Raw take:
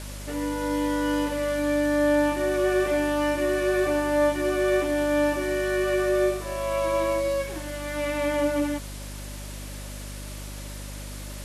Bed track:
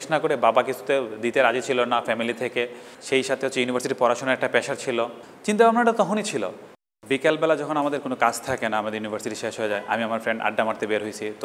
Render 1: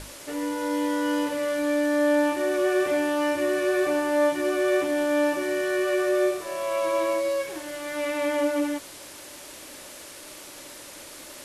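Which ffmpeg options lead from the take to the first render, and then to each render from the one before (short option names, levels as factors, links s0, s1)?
-af "bandreject=f=50:t=h:w=6,bandreject=f=100:t=h:w=6,bandreject=f=150:t=h:w=6,bandreject=f=200:t=h:w=6,bandreject=f=250:t=h:w=6"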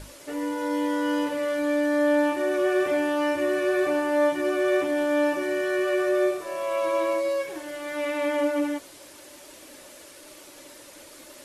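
-af "afftdn=nr=6:nf=-43"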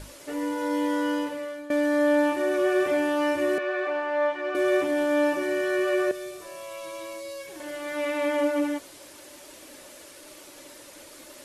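-filter_complex "[0:a]asettb=1/sr,asplit=3[s0][s1][s2];[s0]atrim=end=3.584[s3];[s1]atrim=start=3.58:end=4.55,asetpts=PTS-STARTPTS,afade=t=in:d=0.004:c=qsin,afade=t=out:st=0.966:d=0.004:c=qsin,highpass=570,lowpass=3000[s4];[s2]atrim=start=4.546[s5];[s3][s4]acrossfade=d=0.004:c1=hsin:c2=qsin[s6];[s6][s5]acrossfade=d=0.004:c1=qsin:c2=hsin,asettb=1/sr,asplit=3[s7][s8][s9];[s7]atrim=end=6.114[s10];[s8]atrim=start=6.11:end=7.6,asetpts=PTS-STARTPTS,afade=t=in:d=0.004:c=qsin,afade=t=out:st=1.486:d=0.004:c=qsin,acrossover=split=160|3000[s11][s12][s13];[s12]acompressor=threshold=0.00708:ratio=2.5:attack=3.2:release=140:knee=2.83:detection=peak[s14];[s11][s14][s13]amix=inputs=3:normalize=0[s15];[s9]atrim=start=7.596[s16];[s10][s15]acrossfade=d=0.004:c1=hsin:c2=qsin[s17];[s17][s16]acrossfade=d=0.004:c1=qsin:c2=hsin,asplit=2[s18][s19];[s18]atrim=end=1.7,asetpts=PTS-STARTPTS,afade=t=out:st=1:d=0.7:silence=0.133352[s20];[s19]atrim=start=1.7,asetpts=PTS-STARTPTS,afade=t=in:d=0.004:c=hsin:silence=0.133352[s21];[s20][s21]concat=n=2:v=0:a=1"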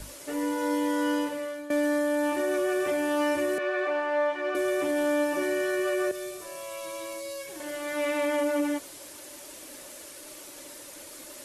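-filter_complex "[0:a]acrossover=split=110|6200[s0][s1][s2];[s1]alimiter=limit=0.106:level=0:latency=1:release=47[s3];[s2]acontrast=30[s4];[s0][s3][s4]amix=inputs=3:normalize=0"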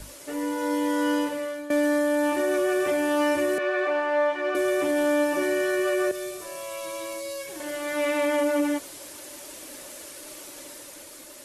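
-af "dynaudnorm=f=230:g=7:m=1.41"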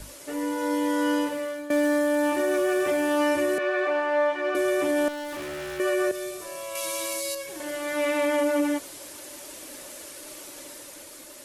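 -filter_complex "[0:a]asettb=1/sr,asplit=3[s0][s1][s2];[s0]atrim=end=1.284[s3];[s1]atrim=start=1.28:end=3.17,asetpts=PTS-STARTPTS,afade=t=in:d=0.004:c=qsin,afade=t=out:st=1.886:d=0.004:c=qsin,acrusher=bits=9:mode=log:mix=0:aa=0.000001[s4];[s2]atrim=start=3.166[s5];[s3][s4]acrossfade=d=0.004:c1=hsin:c2=qsin[s6];[s6][s5]acrossfade=d=0.004:c1=qsin:c2=hsin,asettb=1/sr,asplit=3[s7][s8][s9];[s7]atrim=end=5.084[s10];[s8]atrim=start=5.08:end=5.8,asetpts=PTS-STARTPTS,afade=t=in:d=0.004:c=qsin,afade=t=out:st=0.716:d=0.004:c=qsin,asoftclip=type=hard:threshold=0.0224[s11];[s9]atrim=start=5.796[s12];[s10][s11]acrossfade=d=0.004:c1=hsin:c2=qsin[s13];[s13][s12]acrossfade=d=0.004:c1=qsin:c2=hsin,asettb=1/sr,asplit=3[s14][s15][s16];[s14]atrim=end=6.754[s17];[s15]atrim=start=6.75:end=7.35,asetpts=PTS-STARTPTS,afade=t=in:d=0.004:c=qsin,afade=t=out:st=0.596:d=0.004:c=qsin,highshelf=f=2400:g=10[s18];[s16]atrim=start=7.346[s19];[s17][s18]acrossfade=d=0.004:c1=hsin:c2=qsin[s20];[s20][s19]acrossfade=d=0.004:c1=qsin:c2=hsin"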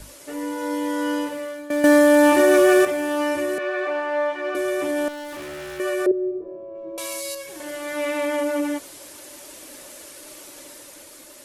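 -filter_complex "[0:a]asettb=1/sr,asplit=3[s0][s1][s2];[s0]atrim=end=6.064[s3];[s1]atrim=start=6.06:end=6.98,asetpts=PTS-STARTPTS,afade=t=in:d=0.004:c=qsin,afade=t=out:st=0.916:d=0.004:c=qsin,lowpass=f=400:t=q:w=4[s4];[s2]atrim=start=6.976[s5];[s3][s4]acrossfade=d=0.004:c1=hsin:c2=qsin[s6];[s6][s5]acrossfade=d=0.004:c1=qsin:c2=hsin,asplit=3[s7][s8][s9];[s7]atrim=end=1.842[s10];[s8]atrim=start=1.838:end=2.852,asetpts=PTS-STARTPTS,volume=2.99[s11];[s9]atrim=start=2.848[s12];[s10][s11]acrossfade=d=0.004:c1=hsin:c2=hsin[s13];[s13][s12]acrossfade=d=0.004:c1=hsin:c2=hsin"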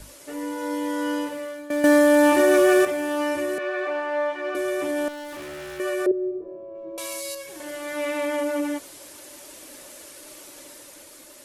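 -af "volume=0.794"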